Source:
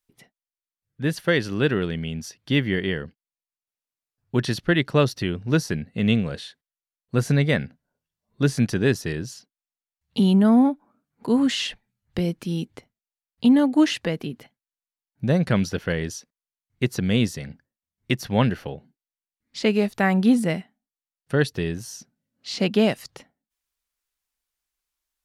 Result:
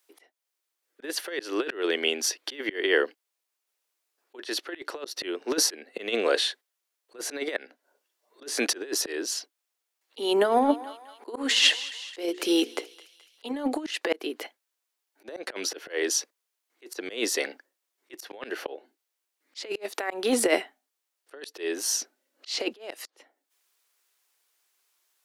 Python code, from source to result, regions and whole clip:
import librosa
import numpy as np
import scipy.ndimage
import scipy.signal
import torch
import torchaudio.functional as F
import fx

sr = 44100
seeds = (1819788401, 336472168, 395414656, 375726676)

y = fx.chain(x, sr, fx.hum_notches(base_hz=60, count=8),
    fx.echo_thinned(ms=213, feedback_pct=59, hz=1000.0, wet_db=-19), at=(10.23, 13.53))
y = scipy.signal.sosfilt(scipy.signal.butter(8, 320.0, 'highpass', fs=sr, output='sos'), y)
y = fx.over_compress(y, sr, threshold_db=-28.0, ratio=-0.5)
y = fx.auto_swell(y, sr, attack_ms=328.0)
y = y * librosa.db_to_amplitude(8.5)